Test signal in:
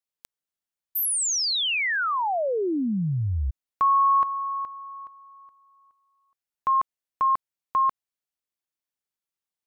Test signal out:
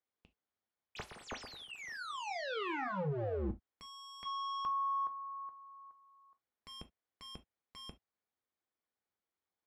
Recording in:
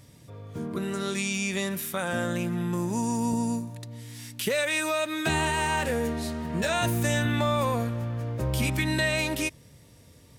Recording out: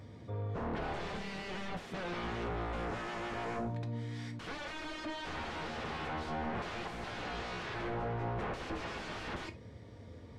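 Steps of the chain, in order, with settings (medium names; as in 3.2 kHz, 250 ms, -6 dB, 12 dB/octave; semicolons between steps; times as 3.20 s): high-pass 70 Hz 12 dB/octave; peaking EQ 150 Hz -12 dB 0.39 oct; band-stop 2.7 kHz, Q 8.4; peak limiter -20 dBFS; wavefolder -36.5 dBFS; tape spacing loss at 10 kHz 32 dB; gated-style reverb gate 90 ms falling, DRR 7 dB; trim +6 dB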